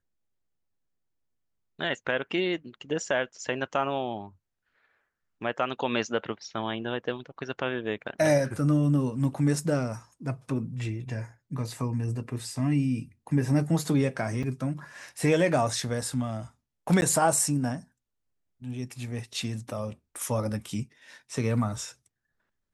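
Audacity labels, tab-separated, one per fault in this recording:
14.430000	14.430000	drop-out 4.7 ms
17.010000	17.020000	drop-out 9.9 ms

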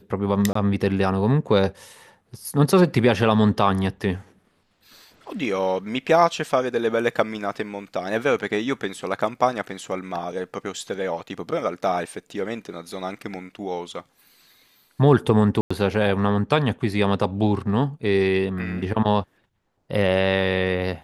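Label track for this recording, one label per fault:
0.530000	0.550000	drop-out 24 ms
15.610000	15.710000	drop-out 95 ms

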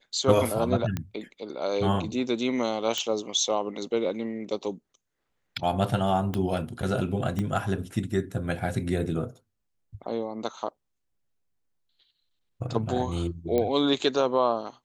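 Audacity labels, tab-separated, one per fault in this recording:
0.970000	0.970000	click −16 dBFS
2.980000	2.980000	click −13 dBFS
6.340000	6.340000	click −16 dBFS
7.390000	7.390000	click −17 dBFS
13.580000	13.580000	click −14 dBFS

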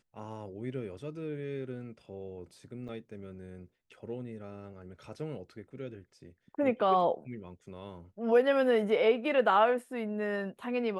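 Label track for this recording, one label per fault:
2.880000	2.890000	drop-out 7.3 ms

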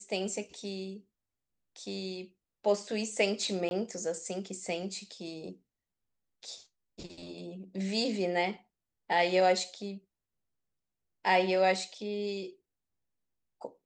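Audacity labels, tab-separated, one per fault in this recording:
3.690000	3.710000	drop-out 21 ms

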